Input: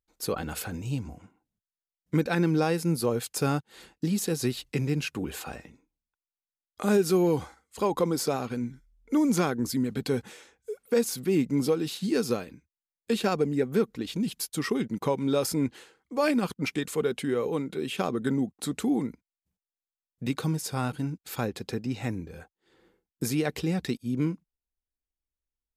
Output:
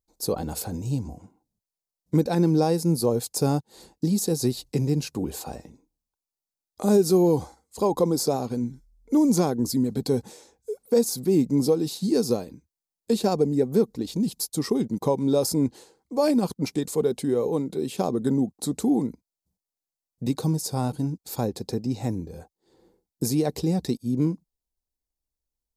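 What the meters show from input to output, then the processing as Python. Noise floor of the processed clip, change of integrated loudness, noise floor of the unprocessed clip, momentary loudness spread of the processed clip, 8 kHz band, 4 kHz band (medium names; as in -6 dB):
under -85 dBFS, +3.5 dB, under -85 dBFS, 10 LU, +4.0 dB, +1.5 dB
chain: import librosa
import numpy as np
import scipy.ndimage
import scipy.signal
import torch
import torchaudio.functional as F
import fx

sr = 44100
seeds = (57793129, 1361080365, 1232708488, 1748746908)

y = fx.band_shelf(x, sr, hz=2000.0, db=-13.0, octaves=1.7)
y = y * librosa.db_to_amplitude(4.0)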